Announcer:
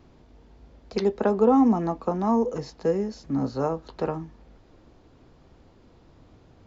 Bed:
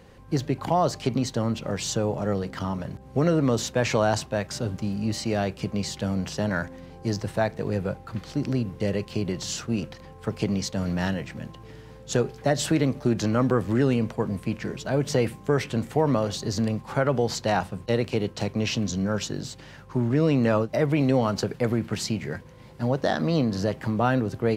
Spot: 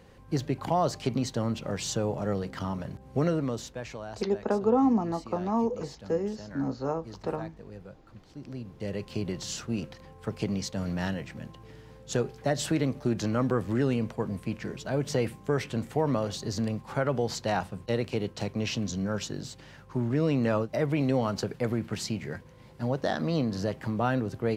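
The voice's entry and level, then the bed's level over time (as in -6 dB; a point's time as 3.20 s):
3.25 s, -4.5 dB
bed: 3.22 s -3.5 dB
3.99 s -18 dB
8.29 s -18 dB
9.11 s -4.5 dB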